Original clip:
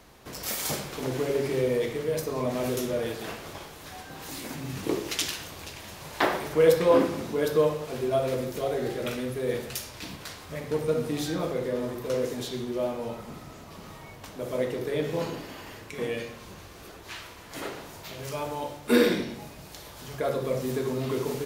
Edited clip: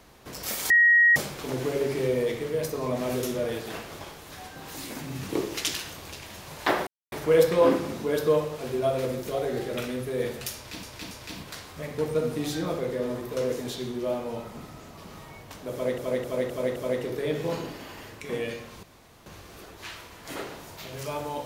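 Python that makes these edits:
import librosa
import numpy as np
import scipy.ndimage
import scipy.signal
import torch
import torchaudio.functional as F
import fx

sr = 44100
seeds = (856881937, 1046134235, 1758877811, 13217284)

y = fx.edit(x, sr, fx.insert_tone(at_s=0.7, length_s=0.46, hz=1890.0, db=-14.5),
    fx.insert_silence(at_s=6.41, length_s=0.25),
    fx.repeat(start_s=9.84, length_s=0.28, count=3),
    fx.repeat(start_s=14.45, length_s=0.26, count=5),
    fx.insert_room_tone(at_s=16.52, length_s=0.43), tone=tone)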